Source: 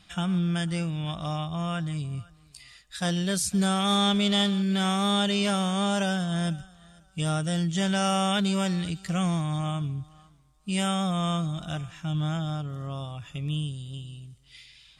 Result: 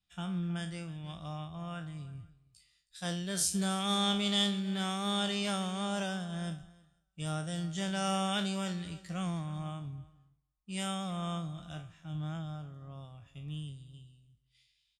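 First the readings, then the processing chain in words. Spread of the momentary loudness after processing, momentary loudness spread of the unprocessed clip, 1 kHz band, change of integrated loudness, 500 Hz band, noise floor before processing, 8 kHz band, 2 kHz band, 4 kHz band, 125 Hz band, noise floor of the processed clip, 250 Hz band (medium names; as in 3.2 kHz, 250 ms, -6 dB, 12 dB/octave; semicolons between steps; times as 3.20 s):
17 LU, 13 LU, -8.0 dB, -7.5 dB, -8.5 dB, -58 dBFS, -4.0 dB, -7.5 dB, -6.0 dB, -9.5 dB, -77 dBFS, -9.0 dB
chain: spectral sustain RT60 0.37 s; delay 321 ms -16 dB; three bands expanded up and down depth 70%; trim -9 dB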